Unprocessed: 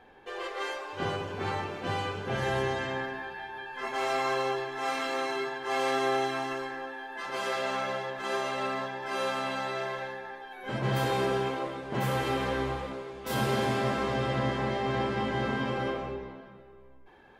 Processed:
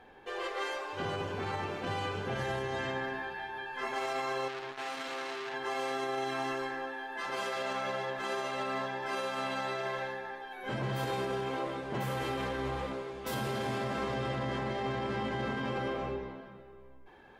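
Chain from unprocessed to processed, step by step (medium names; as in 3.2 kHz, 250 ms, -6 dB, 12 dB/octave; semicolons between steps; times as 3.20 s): peak limiter -26 dBFS, peak gain reduction 9.5 dB; 4.48–5.54 s: transformer saturation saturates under 1.9 kHz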